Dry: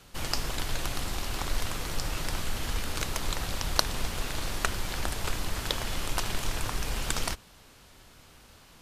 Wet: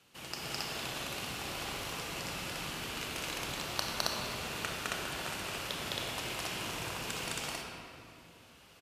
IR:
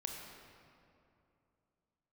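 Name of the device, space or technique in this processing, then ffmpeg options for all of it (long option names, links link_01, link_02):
stadium PA: -filter_complex "[0:a]highpass=130,equalizer=frequency=2700:width_type=o:width=0.51:gain=6,aecho=1:1:209.9|271.1:1|1[link_01];[1:a]atrim=start_sample=2205[link_02];[link_01][link_02]afir=irnorm=-1:irlink=0,volume=-8.5dB"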